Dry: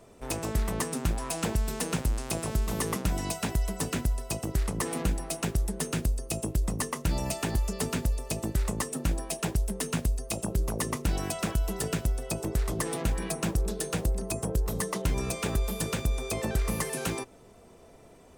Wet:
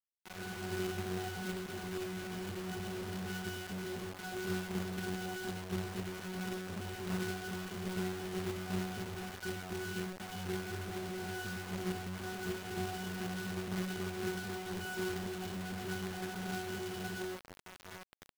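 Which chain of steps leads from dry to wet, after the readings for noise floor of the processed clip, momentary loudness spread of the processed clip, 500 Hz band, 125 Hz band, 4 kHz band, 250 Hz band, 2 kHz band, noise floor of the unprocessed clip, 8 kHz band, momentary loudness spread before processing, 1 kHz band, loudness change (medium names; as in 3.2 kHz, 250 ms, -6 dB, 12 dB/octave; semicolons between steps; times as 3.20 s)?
-54 dBFS, 4 LU, -5.5 dB, -11.5 dB, -6.0 dB, -6.0 dB, -2.5 dB, -53 dBFS, -14.5 dB, 2 LU, -6.5 dB, -9.0 dB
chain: high-pass 130 Hz 12 dB/octave; peaking EQ 350 Hz -13 dB 0.25 oct; compression 20:1, threshold -36 dBFS, peak gain reduction 11.5 dB; peak limiter -29.5 dBFS, peak gain reduction 7.5 dB; level rider gain up to 11.5 dB; wavefolder -25.5 dBFS; noise-vocoded speech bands 3; pitch-class resonator F#, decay 0.68 s; companded quantiser 4-bit; trim +10 dB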